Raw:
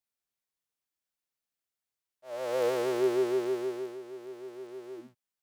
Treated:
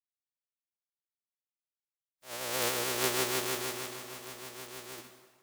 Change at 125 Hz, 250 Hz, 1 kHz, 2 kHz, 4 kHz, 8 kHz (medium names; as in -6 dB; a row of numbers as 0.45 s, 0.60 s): +4.5 dB, -7.5 dB, +2.0 dB, +7.5 dB, +11.5 dB, +15.5 dB